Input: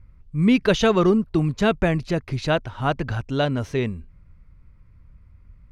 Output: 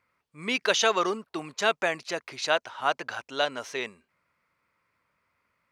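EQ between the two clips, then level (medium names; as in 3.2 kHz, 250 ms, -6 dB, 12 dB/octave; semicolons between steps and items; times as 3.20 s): high-pass 690 Hz 12 dB/octave; dynamic bell 6.3 kHz, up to +6 dB, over -49 dBFS, Q 1.3; 0.0 dB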